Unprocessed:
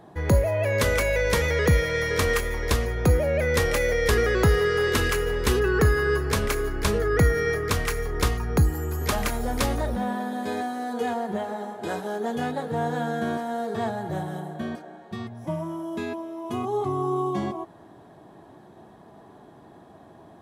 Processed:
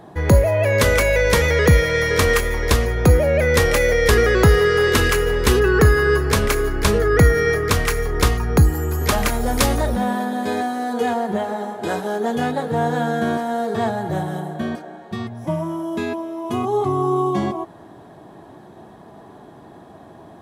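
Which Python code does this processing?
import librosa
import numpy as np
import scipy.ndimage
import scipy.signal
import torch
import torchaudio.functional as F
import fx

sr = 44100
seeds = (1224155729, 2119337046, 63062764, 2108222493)

y = fx.peak_eq(x, sr, hz=11000.0, db=4.0, octaves=2.2, at=(9.46, 10.25))
y = F.gain(torch.from_numpy(y), 6.5).numpy()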